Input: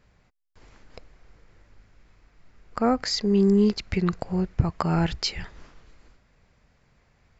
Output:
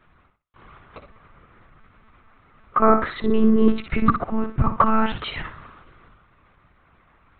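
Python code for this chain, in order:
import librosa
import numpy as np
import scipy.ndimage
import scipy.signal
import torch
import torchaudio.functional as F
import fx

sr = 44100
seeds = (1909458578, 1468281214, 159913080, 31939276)

y = scipy.signal.sosfilt(scipy.signal.butter(4, 41.0, 'highpass', fs=sr, output='sos'), x)
y = fx.peak_eq(y, sr, hz=1200.0, db=12.5, octaves=0.55)
y = fx.echo_feedback(y, sr, ms=62, feedback_pct=24, wet_db=-8.5)
y = fx.lpc_monotone(y, sr, seeds[0], pitch_hz=220.0, order=16)
y = F.gain(torch.from_numpy(y), 3.5).numpy()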